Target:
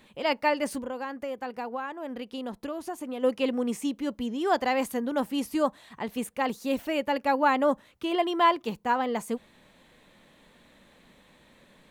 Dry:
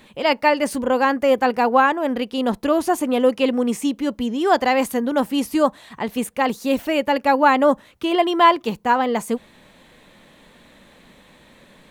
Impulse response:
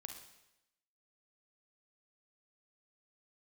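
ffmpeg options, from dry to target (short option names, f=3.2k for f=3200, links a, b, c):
-filter_complex "[0:a]asplit=3[a][b][c];[a]afade=t=out:st=0.78:d=0.02[d];[b]acompressor=threshold=-25dB:ratio=4,afade=t=in:st=0.78:d=0.02,afade=t=out:st=3.22:d=0.02[e];[c]afade=t=in:st=3.22:d=0.02[f];[d][e][f]amix=inputs=3:normalize=0,volume=-8dB"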